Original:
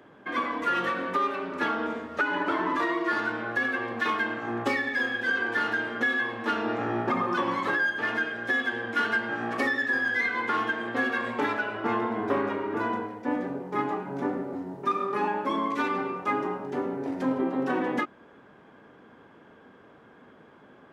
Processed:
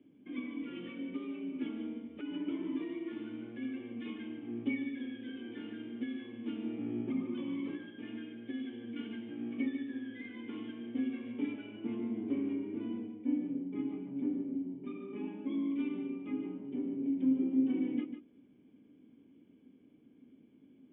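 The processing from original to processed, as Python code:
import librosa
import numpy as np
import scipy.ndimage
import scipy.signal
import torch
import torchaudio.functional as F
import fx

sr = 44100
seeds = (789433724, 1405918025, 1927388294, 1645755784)

p1 = fx.formant_cascade(x, sr, vowel='i')
y = p1 + fx.echo_single(p1, sr, ms=148, db=-9.5, dry=0)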